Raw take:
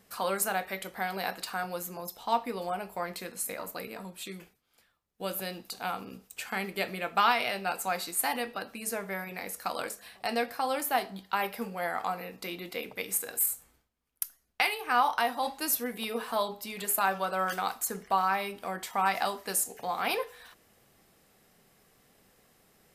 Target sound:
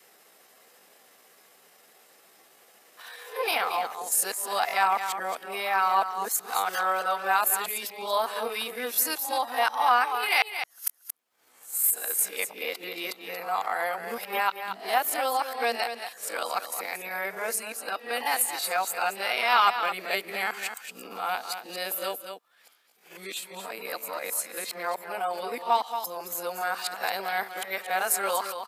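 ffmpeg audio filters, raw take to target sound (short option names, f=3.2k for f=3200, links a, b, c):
-filter_complex "[0:a]areverse,adynamicequalizer=threshold=0.00562:dfrequency=600:dqfactor=4.2:tfrequency=600:tqfactor=4.2:attack=5:release=100:ratio=0.375:range=2:mode=cutabove:tftype=bell,highpass=470,aecho=1:1:181:0.335,atempo=0.8,asplit=2[a][b];[b]acompressor=threshold=-44dB:ratio=6,volume=-2dB[c];[a][c]amix=inputs=2:normalize=0,volume=3dB"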